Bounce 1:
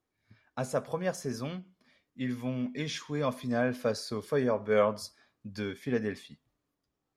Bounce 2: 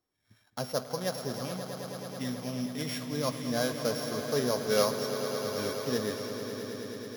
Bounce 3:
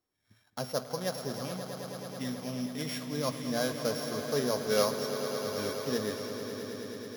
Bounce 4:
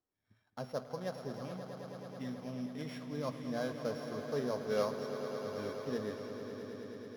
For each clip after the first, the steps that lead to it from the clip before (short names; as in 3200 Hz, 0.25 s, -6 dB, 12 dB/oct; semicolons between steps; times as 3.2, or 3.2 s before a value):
sample sorter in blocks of 8 samples; low shelf 460 Hz -3 dB; on a send: swelling echo 0.108 s, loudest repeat 5, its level -11.5 dB
notches 60/120 Hz; gain -1 dB
LPF 1800 Hz 6 dB/oct; gain -5 dB